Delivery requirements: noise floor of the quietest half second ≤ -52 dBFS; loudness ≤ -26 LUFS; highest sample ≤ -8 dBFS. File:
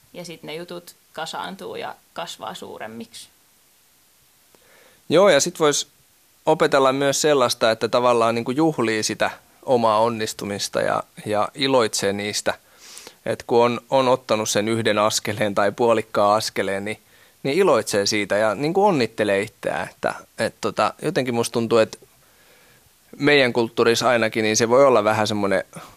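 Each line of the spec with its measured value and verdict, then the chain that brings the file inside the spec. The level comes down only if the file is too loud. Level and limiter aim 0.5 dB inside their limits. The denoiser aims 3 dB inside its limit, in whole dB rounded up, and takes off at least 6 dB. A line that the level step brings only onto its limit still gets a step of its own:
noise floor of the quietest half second -57 dBFS: OK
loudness -20.0 LUFS: fail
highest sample -5.0 dBFS: fail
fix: gain -6.5 dB

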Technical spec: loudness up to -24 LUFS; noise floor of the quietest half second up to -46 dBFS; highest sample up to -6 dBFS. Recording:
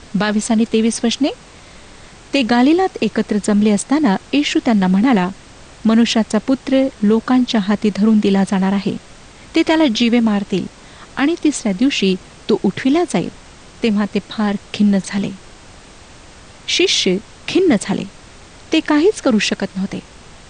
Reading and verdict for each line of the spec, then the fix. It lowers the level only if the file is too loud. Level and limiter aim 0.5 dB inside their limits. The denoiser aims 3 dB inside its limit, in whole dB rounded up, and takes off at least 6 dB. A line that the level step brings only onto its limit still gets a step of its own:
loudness -16.5 LUFS: fail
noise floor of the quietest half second -40 dBFS: fail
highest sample -4.5 dBFS: fail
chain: gain -8 dB

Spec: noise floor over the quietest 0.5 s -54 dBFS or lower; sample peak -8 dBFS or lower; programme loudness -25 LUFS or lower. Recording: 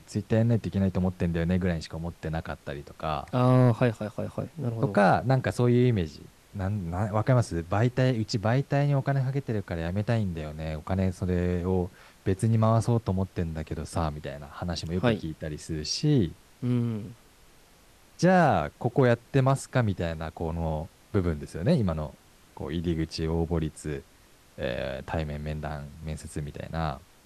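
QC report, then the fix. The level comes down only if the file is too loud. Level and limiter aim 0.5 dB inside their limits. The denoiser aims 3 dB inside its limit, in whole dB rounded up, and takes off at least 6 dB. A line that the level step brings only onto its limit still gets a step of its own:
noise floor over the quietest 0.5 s -57 dBFS: OK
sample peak -10.5 dBFS: OK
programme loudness -28.0 LUFS: OK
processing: none

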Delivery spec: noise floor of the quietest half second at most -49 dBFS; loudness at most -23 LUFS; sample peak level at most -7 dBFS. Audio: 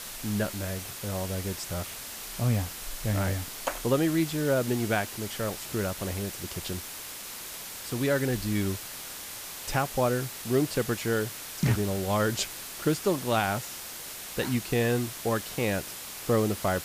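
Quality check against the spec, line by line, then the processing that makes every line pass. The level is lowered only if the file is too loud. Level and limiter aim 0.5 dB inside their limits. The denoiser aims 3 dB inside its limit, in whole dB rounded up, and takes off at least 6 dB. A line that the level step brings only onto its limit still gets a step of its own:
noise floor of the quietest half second -40 dBFS: fail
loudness -29.5 LUFS: OK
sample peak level -13.5 dBFS: OK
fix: denoiser 12 dB, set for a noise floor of -40 dBFS

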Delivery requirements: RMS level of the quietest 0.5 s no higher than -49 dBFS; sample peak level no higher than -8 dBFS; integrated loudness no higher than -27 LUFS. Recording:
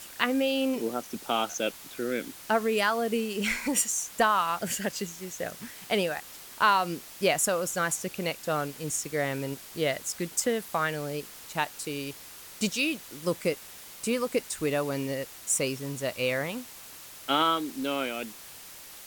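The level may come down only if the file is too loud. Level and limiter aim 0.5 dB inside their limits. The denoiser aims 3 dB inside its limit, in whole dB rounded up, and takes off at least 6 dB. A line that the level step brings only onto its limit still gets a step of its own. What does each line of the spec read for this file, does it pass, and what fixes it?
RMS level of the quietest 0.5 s -46 dBFS: fail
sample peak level -7.5 dBFS: fail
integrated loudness -29.0 LUFS: OK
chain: denoiser 6 dB, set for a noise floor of -46 dBFS; limiter -8.5 dBFS

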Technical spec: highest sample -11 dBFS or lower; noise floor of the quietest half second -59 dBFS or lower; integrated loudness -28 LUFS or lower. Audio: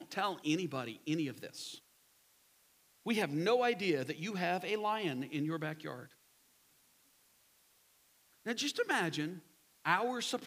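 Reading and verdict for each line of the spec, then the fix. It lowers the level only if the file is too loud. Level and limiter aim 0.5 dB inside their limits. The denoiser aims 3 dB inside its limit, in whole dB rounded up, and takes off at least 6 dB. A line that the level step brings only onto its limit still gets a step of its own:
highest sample -15.0 dBFS: OK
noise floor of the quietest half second -69 dBFS: OK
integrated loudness -36.0 LUFS: OK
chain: none

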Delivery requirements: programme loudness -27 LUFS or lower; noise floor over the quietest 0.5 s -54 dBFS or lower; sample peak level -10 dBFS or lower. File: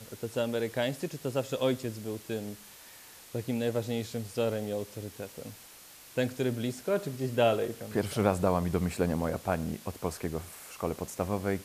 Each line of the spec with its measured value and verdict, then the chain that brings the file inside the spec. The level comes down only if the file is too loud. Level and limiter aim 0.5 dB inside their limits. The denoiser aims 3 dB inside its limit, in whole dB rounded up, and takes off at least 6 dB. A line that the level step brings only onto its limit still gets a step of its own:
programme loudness -32.0 LUFS: OK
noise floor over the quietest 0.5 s -52 dBFS: fail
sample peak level -11.0 dBFS: OK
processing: denoiser 6 dB, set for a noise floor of -52 dBFS

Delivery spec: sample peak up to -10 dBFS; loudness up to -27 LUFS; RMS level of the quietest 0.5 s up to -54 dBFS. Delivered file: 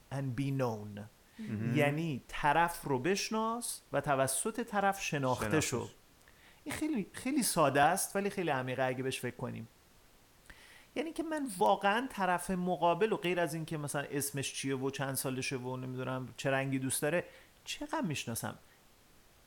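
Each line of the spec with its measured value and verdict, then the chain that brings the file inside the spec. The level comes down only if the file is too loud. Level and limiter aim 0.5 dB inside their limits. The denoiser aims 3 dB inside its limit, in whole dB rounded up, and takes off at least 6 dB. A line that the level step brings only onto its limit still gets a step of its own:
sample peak -15.0 dBFS: OK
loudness -34.0 LUFS: OK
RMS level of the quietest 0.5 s -63 dBFS: OK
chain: none

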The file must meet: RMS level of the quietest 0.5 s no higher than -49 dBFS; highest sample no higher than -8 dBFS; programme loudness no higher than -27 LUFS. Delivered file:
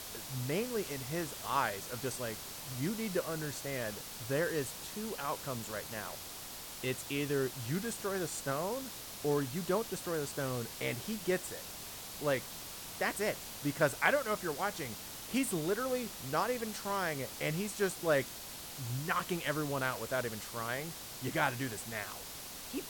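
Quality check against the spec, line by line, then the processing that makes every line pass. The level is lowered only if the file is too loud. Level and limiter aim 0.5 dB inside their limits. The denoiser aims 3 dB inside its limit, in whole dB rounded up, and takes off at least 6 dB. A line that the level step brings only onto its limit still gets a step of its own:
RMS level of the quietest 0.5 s -46 dBFS: fail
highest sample -12.0 dBFS: OK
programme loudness -36.0 LUFS: OK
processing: denoiser 6 dB, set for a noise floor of -46 dBFS

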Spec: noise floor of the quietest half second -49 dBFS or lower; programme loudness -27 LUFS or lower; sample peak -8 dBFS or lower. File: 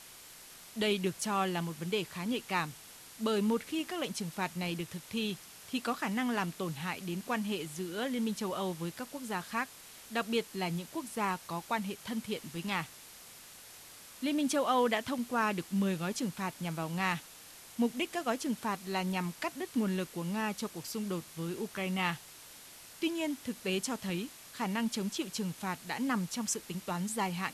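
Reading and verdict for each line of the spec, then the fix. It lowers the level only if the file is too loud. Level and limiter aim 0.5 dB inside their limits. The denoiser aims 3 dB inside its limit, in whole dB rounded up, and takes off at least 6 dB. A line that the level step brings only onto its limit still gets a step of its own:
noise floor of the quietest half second -52 dBFS: OK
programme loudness -35.0 LUFS: OK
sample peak -16.5 dBFS: OK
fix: none

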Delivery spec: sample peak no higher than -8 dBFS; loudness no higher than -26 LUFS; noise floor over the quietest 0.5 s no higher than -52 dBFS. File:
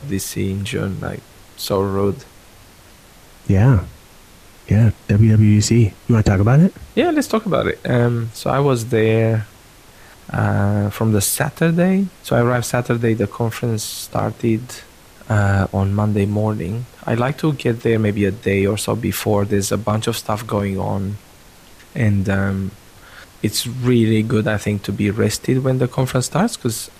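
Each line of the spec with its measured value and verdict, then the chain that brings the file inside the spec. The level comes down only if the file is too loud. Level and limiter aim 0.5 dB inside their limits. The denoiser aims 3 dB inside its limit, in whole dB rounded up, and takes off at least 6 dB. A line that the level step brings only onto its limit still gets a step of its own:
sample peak -4.5 dBFS: fail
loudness -18.5 LUFS: fail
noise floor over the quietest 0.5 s -45 dBFS: fail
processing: gain -8 dB

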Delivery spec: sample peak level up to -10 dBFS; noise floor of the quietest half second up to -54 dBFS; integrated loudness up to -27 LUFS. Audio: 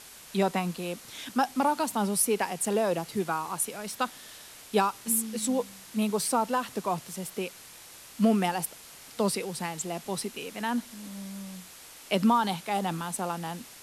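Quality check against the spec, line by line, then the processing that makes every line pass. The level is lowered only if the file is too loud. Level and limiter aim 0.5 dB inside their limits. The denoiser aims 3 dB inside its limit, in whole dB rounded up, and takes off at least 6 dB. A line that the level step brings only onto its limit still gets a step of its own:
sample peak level -12.5 dBFS: OK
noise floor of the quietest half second -49 dBFS: fail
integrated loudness -29.5 LUFS: OK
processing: denoiser 8 dB, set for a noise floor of -49 dBFS

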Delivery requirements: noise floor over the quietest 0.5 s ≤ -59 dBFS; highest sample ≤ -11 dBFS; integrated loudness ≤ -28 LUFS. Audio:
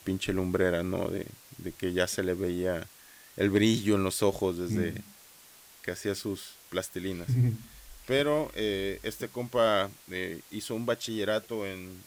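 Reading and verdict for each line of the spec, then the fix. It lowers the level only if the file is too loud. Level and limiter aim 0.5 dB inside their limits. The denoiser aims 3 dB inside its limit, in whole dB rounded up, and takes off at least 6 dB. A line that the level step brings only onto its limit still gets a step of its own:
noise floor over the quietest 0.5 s -55 dBFS: fail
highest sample -12.0 dBFS: OK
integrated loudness -30.5 LUFS: OK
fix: denoiser 7 dB, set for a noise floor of -55 dBFS

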